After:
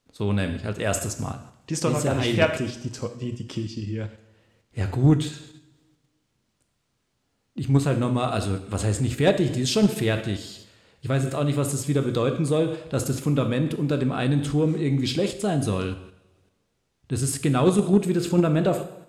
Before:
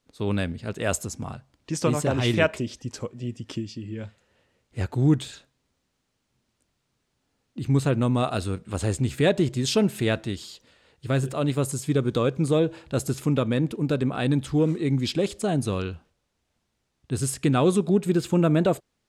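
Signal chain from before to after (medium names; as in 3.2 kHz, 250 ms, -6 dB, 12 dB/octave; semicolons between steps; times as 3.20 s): two-slope reverb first 0.77 s, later 2.1 s, from -25 dB, DRR 6.5 dB; in parallel at 0 dB: level held to a coarse grid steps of 17 dB; on the sum: saturation -5.5 dBFS, distortion -22 dB; trim -2 dB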